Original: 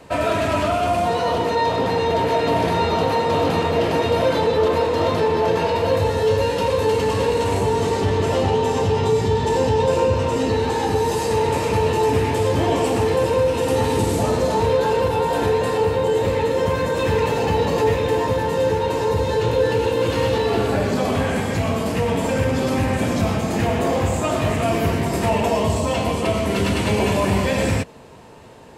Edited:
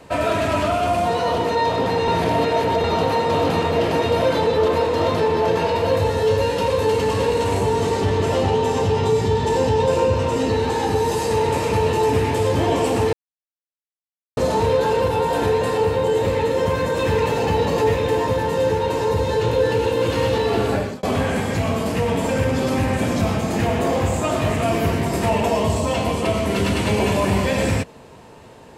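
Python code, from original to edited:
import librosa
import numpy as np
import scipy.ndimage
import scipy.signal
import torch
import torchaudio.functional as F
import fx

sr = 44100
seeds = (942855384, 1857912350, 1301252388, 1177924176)

y = fx.edit(x, sr, fx.reverse_span(start_s=2.08, length_s=0.76),
    fx.silence(start_s=13.13, length_s=1.24),
    fx.fade_out_span(start_s=20.74, length_s=0.29), tone=tone)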